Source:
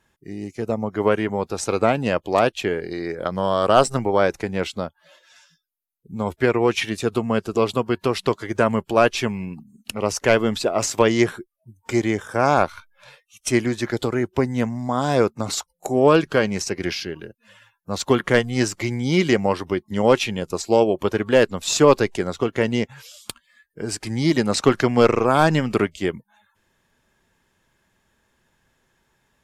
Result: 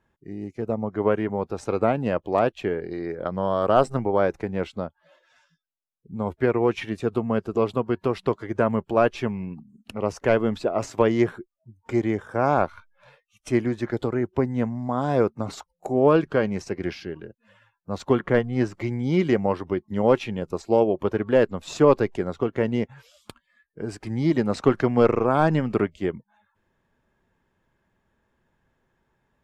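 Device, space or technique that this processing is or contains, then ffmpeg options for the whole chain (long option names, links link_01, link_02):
through cloth: -filter_complex "[0:a]highshelf=frequency=2800:gain=-17,asettb=1/sr,asplit=3[link_01][link_02][link_03];[link_01]atrim=end=18.194[link_04];[link_02]atrim=start=18.19:end=18.75,asetpts=PTS-STARTPTS,afade=type=in:duration=0.004:curve=qsin,afade=type=out:start_time=0.556:duration=0.004:curve=qsin,aemphasis=mode=reproduction:type=cd[link_05];[link_03]atrim=start=18.746[link_06];[link_04][link_05]acrossfade=duration=0.004:curve1=hsin:curve2=qsin[link_07];[link_07][link_06]acrossfade=duration=0.004:curve1=qsin:curve2=hsin,volume=-2dB"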